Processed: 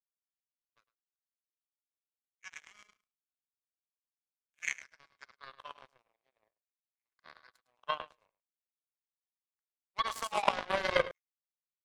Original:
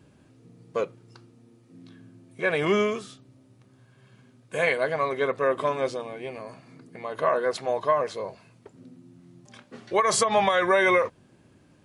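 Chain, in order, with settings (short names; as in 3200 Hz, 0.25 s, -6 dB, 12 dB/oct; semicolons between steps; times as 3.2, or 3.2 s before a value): feedback echo 0.106 s, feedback 33%, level -6 dB; LFO high-pass saw down 0.45 Hz 510–2500 Hz; power-law curve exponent 3; gain -3 dB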